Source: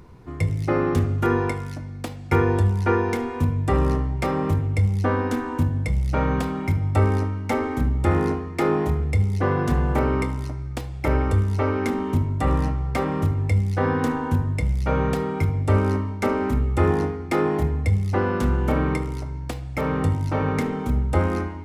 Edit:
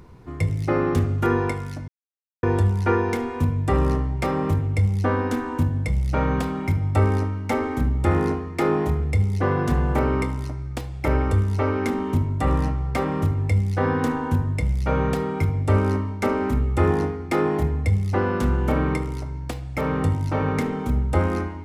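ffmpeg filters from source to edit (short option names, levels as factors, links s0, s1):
-filter_complex "[0:a]asplit=3[s0][s1][s2];[s0]atrim=end=1.88,asetpts=PTS-STARTPTS,afade=t=out:st=1.876:d=0.004:c=hsin[s3];[s1]atrim=start=1.88:end=2.43,asetpts=PTS-STARTPTS,volume=0[s4];[s2]atrim=start=2.43,asetpts=PTS-STARTPTS,afade=t=in:d=0.004:c=hsin[s5];[s3][s4][s5]concat=n=3:v=0:a=1"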